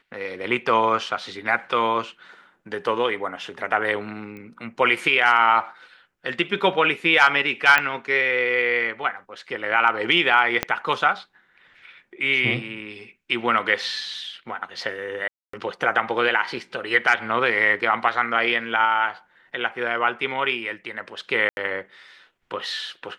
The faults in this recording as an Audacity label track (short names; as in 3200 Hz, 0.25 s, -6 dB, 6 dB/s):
4.370000	4.370000	pop -27 dBFS
7.780000	7.780000	pop -6 dBFS
10.630000	10.630000	pop -6 dBFS
15.280000	15.530000	gap 0.254 s
21.490000	21.570000	gap 81 ms